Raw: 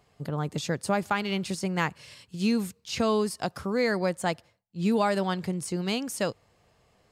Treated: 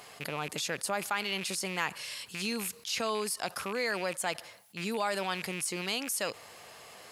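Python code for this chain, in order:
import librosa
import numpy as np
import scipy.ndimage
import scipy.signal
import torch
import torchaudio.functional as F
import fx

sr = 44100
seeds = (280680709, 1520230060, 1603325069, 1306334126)

y = fx.rattle_buzz(x, sr, strikes_db=-38.0, level_db=-32.0)
y = fx.highpass(y, sr, hz=1000.0, slope=6)
y = fx.peak_eq(y, sr, hz=11000.0, db=11.0, octaves=0.26)
y = fx.env_flatten(y, sr, amount_pct=50)
y = y * 10.0 ** (-3.0 / 20.0)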